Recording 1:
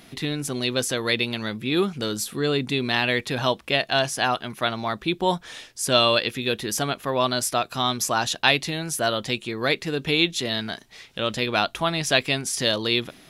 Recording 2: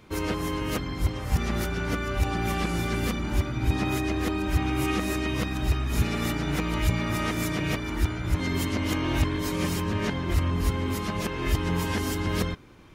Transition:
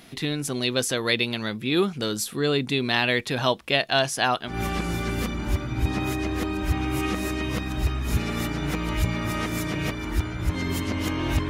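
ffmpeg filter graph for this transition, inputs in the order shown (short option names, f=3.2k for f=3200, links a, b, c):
-filter_complex "[0:a]apad=whole_dur=11.49,atrim=end=11.49,atrim=end=4.59,asetpts=PTS-STARTPTS[a];[1:a]atrim=start=2.3:end=9.34,asetpts=PTS-STARTPTS[b];[a][b]acrossfade=d=0.14:c1=tri:c2=tri"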